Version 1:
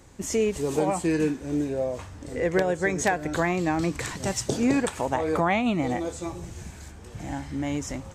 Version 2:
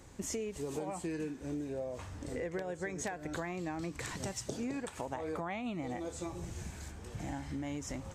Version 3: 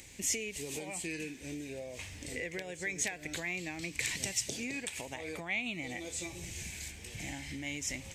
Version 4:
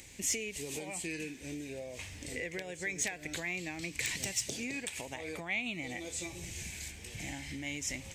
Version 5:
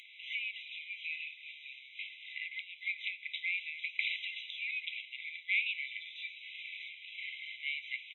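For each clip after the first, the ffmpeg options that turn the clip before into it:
ffmpeg -i in.wav -af "acompressor=threshold=-33dB:ratio=6,volume=-3dB" out.wav
ffmpeg -i in.wav -af "highshelf=frequency=1700:width_type=q:width=3:gain=9.5,crystalizer=i=0.5:c=0,acompressor=mode=upward:threshold=-48dB:ratio=2.5,volume=-3.5dB" out.wav
ffmpeg -i in.wav -af "asoftclip=type=hard:threshold=-23.5dB" out.wav
ffmpeg -i in.wav -af "aresample=11025,acrusher=bits=3:mode=log:mix=0:aa=0.000001,aresample=44100,flanger=delay=6.2:depth=8.7:regen=84:speed=0.45:shape=sinusoidal,afftfilt=real='re*eq(mod(floor(b*sr/1024/2000),2),1)':imag='im*eq(mod(floor(b*sr/1024/2000),2),1)':win_size=1024:overlap=0.75,volume=8.5dB" out.wav

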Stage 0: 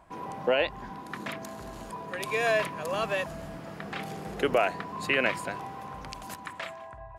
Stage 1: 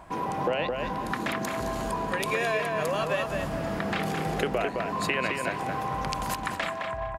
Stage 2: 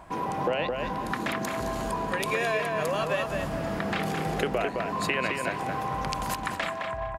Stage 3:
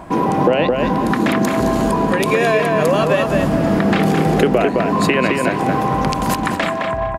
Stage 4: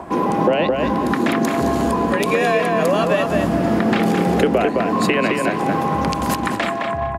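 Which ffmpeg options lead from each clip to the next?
ffmpeg -i in.wav -filter_complex "[0:a]acompressor=threshold=-35dB:ratio=6,asplit=2[link_01][link_02];[link_02]adelay=214,lowpass=frequency=2900:poles=1,volume=-3.5dB,asplit=2[link_03][link_04];[link_04]adelay=214,lowpass=frequency=2900:poles=1,volume=0.28,asplit=2[link_05][link_06];[link_06]adelay=214,lowpass=frequency=2900:poles=1,volume=0.28,asplit=2[link_07][link_08];[link_08]adelay=214,lowpass=frequency=2900:poles=1,volume=0.28[link_09];[link_01][link_03][link_05][link_07][link_09]amix=inputs=5:normalize=0,volume=9dB" out.wav
ffmpeg -i in.wav -af anull out.wav
ffmpeg -i in.wav -filter_complex "[0:a]equalizer=frequency=260:width_type=o:width=2:gain=9.5,asplit=2[link_01][link_02];[link_02]alimiter=limit=-16dB:level=0:latency=1:release=164,volume=-2dB[link_03];[link_01][link_03]amix=inputs=2:normalize=0,volume=4.5dB" out.wav
ffmpeg -i in.wav -filter_complex "[0:a]acrossover=split=200|1400|6800[link_01][link_02][link_03][link_04];[link_02]acompressor=mode=upward:threshold=-27dB:ratio=2.5[link_05];[link_01][link_05][link_03][link_04]amix=inputs=4:normalize=0,afreqshift=20,volume=-2dB" out.wav

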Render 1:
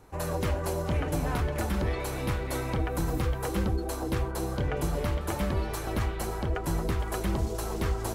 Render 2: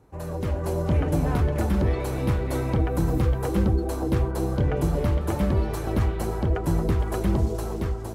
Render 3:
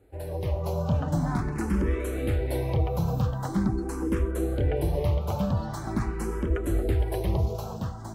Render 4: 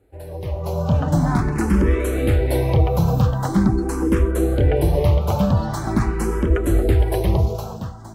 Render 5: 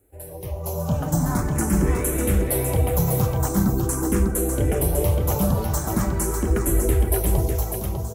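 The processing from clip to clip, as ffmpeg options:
ffmpeg -i in.wav -af "highpass=50,dynaudnorm=framelen=110:gausssize=11:maxgain=7dB,tiltshelf=frequency=730:gain=5,volume=-4dB" out.wav
ffmpeg -i in.wav -filter_complex "[0:a]asplit=2[link_01][link_02];[link_02]afreqshift=0.44[link_03];[link_01][link_03]amix=inputs=2:normalize=1" out.wav
ffmpeg -i in.wav -af "dynaudnorm=framelen=140:gausssize=11:maxgain=9dB" out.wav
ffmpeg -i in.wav -af "flanger=delay=2.9:depth=3.7:regen=-73:speed=1.4:shape=triangular,aexciter=amount=2.5:drive=9.8:freq=6100,aecho=1:1:599:0.531" out.wav

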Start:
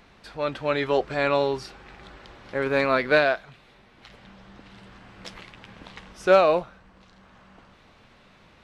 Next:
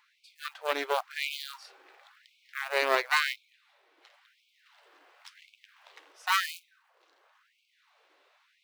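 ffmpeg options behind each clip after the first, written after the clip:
ffmpeg -i in.wav -af "acrusher=bits=6:mode=log:mix=0:aa=0.000001,aeval=exprs='0.473*(cos(1*acos(clip(val(0)/0.473,-1,1)))-cos(1*PI/2))+0.0668*(cos(3*acos(clip(val(0)/0.473,-1,1)))-cos(3*PI/2))+0.15*(cos(4*acos(clip(val(0)/0.473,-1,1)))-cos(4*PI/2))':channel_layout=same,afftfilt=real='re*gte(b*sr/1024,280*pow(2200/280,0.5+0.5*sin(2*PI*0.95*pts/sr)))':imag='im*gte(b*sr/1024,280*pow(2200/280,0.5+0.5*sin(2*PI*0.95*pts/sr)))':win_size=1024:overlap=0.75,volume=-4.5dB" out.wav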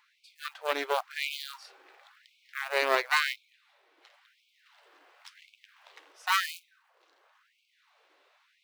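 ffmpeg -i in.wav -af anull out.wav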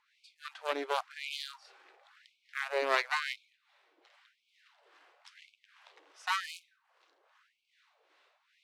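ffmpeg -i in.wav -filter_complex "[0:a]lowpass=9100,acrossover=split=790[link_01][link_02];[link_01]aeval=exprs='val(0)*(1-0.7/2+0.7/2*cos(2*PI*2.5*n/s))':channel_layout=same[link_03];[link_02]aeval=exprs='val(0)*(1-0.7/2-0.7/2*cos(2*PI*2.5*n/s))':channel_layout=same[link_04];[link_03][link_04]amix=inputs=2:normalize=0" out.wav

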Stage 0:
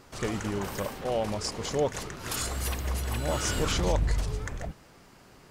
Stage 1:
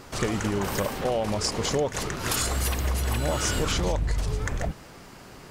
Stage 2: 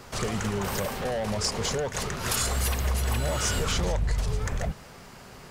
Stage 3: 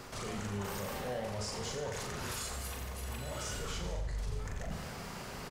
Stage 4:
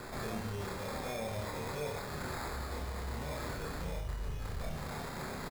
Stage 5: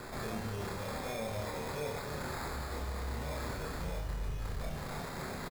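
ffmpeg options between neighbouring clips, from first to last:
ffmpeg -i in.wav -af "acompressor=threshold=-31dB:ratio=5,volume=8.5dB" out.wav
ffmpeg -i in.wav -filter_complex "[0:a]equalizer=frequency=310:width_type=o:width=0.22:gain=-12,acrossover=split=130|4900[link_01][link_02][link_03];[link_02]asoftclip=type=hard:threshold=-26dB[link_04];[link_01][link_04][link_03]amix=inputs=3:normalize=0" out.wav
ffmpeg -i in.wav -af "alimiter=level_in=0.5dB:limit=-24dB:level=0:latency=1,volume=-0.5dB,areverse,acompressor=threshold=-40dB:ratio=5,areverse,aecho=1:1:40|88|145.6|214.7|297.7:0.631|0.398|0.251|0.158|0.1,volume=1dB" out.wav
ffmpeg -i in.wav -filter_complex "[0:a]alimiter=level_in=9.5dB:limit=-24dB:level=0:latency=1:release=117,volume=-9.5dB,acrusher=samples=15:mix=1:aa=0.000001,asplit=2[link_01][link_02];[link_02]adelay=27,volume=-3.5dB[link_03];[link_01][link_03]amix=inputs=2:normalize=0,volume=2dB" out.wav
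ffmpeg -i in.wav -af "aecho=1:1:292:0.316" out.wav

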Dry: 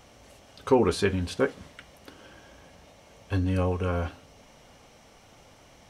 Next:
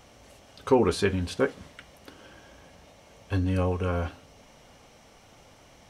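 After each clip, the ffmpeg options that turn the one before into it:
ffmpeg -i in.wav -af anull out.wav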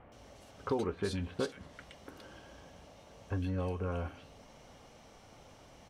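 ffmpeg -i in.wav -filter_complex "[0:a]acompressor=threshold=-33dB:ratio=2.5,highshelf=frequency=6400:gain=-6,acrossover=split=2200[link_01][link_02];[link_02]adelay=120[link_03];[link_01][link_03]amix=inputs=2:normalize=0,volume=-1.5dB" out.wav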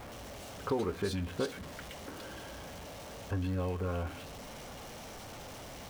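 ffmpeg -i in.wav -af "aeval=exprs='val(0)+0.5*0.00708*sgn(val(0))':channel_layout=same" out.wav

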